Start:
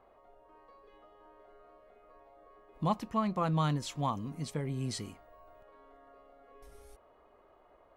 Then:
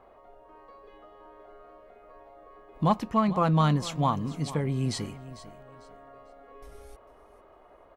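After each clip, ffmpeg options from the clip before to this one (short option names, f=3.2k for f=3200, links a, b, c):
-filter_complex "[0:a]highshelf=f=4.8k:g=-5,asplit=2[a][b];[b]aeval=exprs='clip(val(0),-1,0.0501)':c=same,volume=-7dB[c];[a][c]amix=inputs=2:normalize=0,aecho=1:1:448|896|1344:0.158|0.0428|0.0116,volume=4dB"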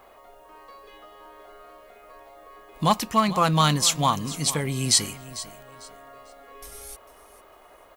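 -af "crystalizer=i=9.5:c=0"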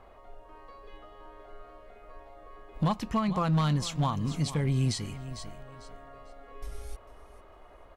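-af "acompressor=threshold=-25dB:ratio=2.5,aemphasis=mode=reproduction:type=bsi,asoftclip=type=hard:threshold=-16.5dB,volume=-4dB"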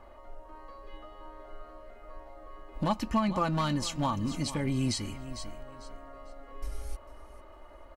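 -af "bandreject=f=3.5k:w=12,aecho=1:1:3.4:0.56"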